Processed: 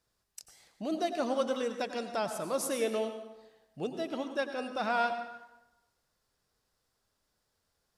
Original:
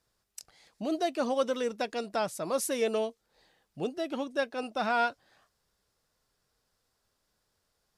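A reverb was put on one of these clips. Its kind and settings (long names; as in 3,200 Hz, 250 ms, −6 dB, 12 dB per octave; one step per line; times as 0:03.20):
dense smooth reverb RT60 0.96 s, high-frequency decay 0.7×, pre-delay 80 ms, DRR 7.5 dB
level −2.5 dB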